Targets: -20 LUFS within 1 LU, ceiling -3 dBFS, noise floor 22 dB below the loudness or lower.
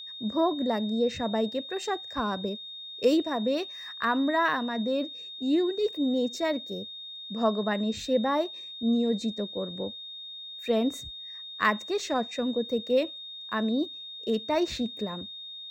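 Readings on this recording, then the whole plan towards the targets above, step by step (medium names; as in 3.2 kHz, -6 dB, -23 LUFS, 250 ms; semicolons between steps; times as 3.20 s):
steady tone 3.7 kHz; tone level -39 dBFS; loudness -29.0 LUFS; peak level -10.0 dBFS; loudness target -20.0 LUFS
-> band-stop 3.7 kHz, Q 30; trim +9 dB; peak limiter -3 dBFS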